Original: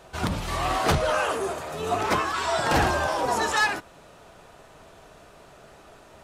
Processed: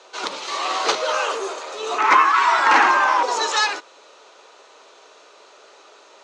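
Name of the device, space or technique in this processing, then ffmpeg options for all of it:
phone speaker on a table: -filter_complex "[0:a]highpass=f=410:w=0.5412,highpass=f=410:w=1.3066,equalizer=f=690:t=q:w=4:g=-9,equalizer=f=1700:t=q:w=4:g=-5,equalizer=f=4100:t=q:w=4:g=5,equalizer=f=6400:t=q:w=4:g=5,lowpass=f=6900:w=0.5412,lowpass=f=6900:w=1.3066,asettb=1/sr,asplit=3[s0][s1][s2];[s0]atrim=end=1.984[s3];[s1]atrim=start=1.98:end=3.23,asetpts=PTS-STARTPTS,afade=t=in:d=0.004:c=qsin,afade=t=out:st=1.246:d=0.004:c=qsin,equalizer=f=125:t=o:w=1:g=-7,equalizer=f=250:t=o:w=1:g=11,equalizer=f=500:t=o:w=1:g=-9,equalizer=f=1000:t=o:w=1:g=9,equalizer=f=2000:t=o:w=1:g=10,equalizer=f=4000:t=o:w=1:g=-7,equalizer=f=8000:t=o:w=1:g=-4[s4];[s2]atrim=start=3.226[s5];[s3][s4]acrossfade=d=0.004:c1=hsin:c2=qsin[s6];[s6][s5]acrossfade=d=0.004:c1=qsin:c2=hsin,volume=1.78"

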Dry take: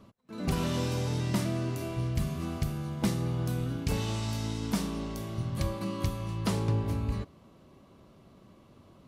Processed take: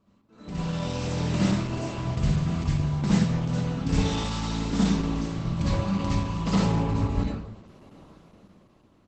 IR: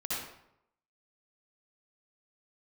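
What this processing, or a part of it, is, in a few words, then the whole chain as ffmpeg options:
speakerphone in a meeting room: -filter_complex "[1:a]atrim=start_sample=2205[s0];[0:a][s0]afir=irnorm=-1:irlink=0,asplit=2[s1][s2];[s2]adelay=120,highpass=300,lowpass=3400,asoftclip=type=hard:threshold=0.0794,volume=0.0794[s3];[s1][s3]amix=inputs=2:normalize=0,dynaudnorm=f=120:g=17:m=5.31,volume=0.376" -ar 48000 -c:a libopus -b:a 12k

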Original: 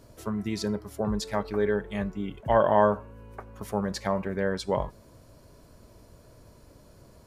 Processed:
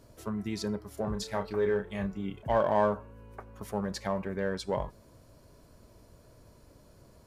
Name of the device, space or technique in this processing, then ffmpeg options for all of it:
parallel distortion: -filter_complex "[0:a]asplit=2[s0][s1];[s1]asoftclip=type=hard:threshold=0.0596,volume=0.335[s2];[s0][s2]amix=inputs=2:normalize=0,asettb=1/sr,asplit=3[s3][s4][s5];[s3]atrim=end=0.944[s6];[s4]atrim=start=0.94:end=2.47,asetpts=PTS-STARTPTS,afade=t=in:d=0.004:c=qsin,afade=t=out:st=1.526:d=0.004:c=qsin,asplit=2[s7][s8];[s8]adelay=31,volume=0.447[s9];[s7][s9]amix=inputs=2:normalize=0,atrim=end_sample=67473[s10];[s5]atrim=start=2.466[s11];[s6][s10]acrossfade=d=0.004:c1=hsin:c2=qsin[s12];[s12][s11]acrossfade=d=0.004:c1=qsin:c2=hsin,volume=0.501"

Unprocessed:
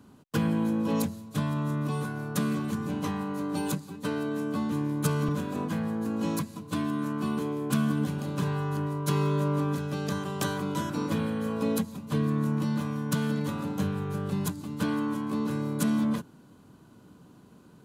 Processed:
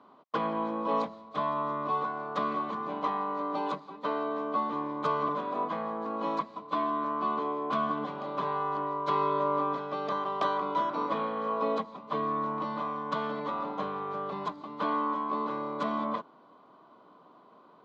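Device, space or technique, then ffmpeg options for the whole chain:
phone earpiece: -af "highpass=480,equalizer=f=650:t=q:w=4:g=7,equalizer=f=1100:t=q:w=4:g=10,equalizer=f=1600:t=q:w=4:g=-8,equalizer=f=2700:t=q:w=4:g=-9,lowpass=f=3400:w=0.5412,lowpass=f=3400:w=1.3066,volume=1.33"

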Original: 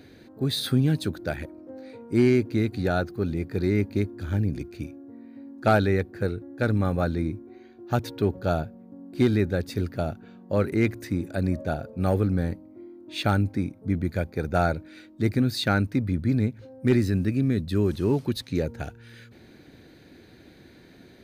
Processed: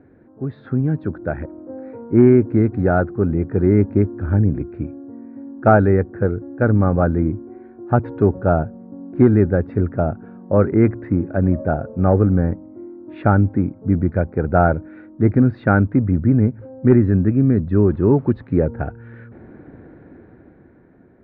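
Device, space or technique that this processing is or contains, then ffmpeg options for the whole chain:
action camera in a waterproof case: -af "lowpass=f=1500:w=0.5412,lowpass=f=1500:w=1.3066,dynaudnorm=f=180:g=13:m=3.55" -ar 48000 -c:a aac -b:a 128k

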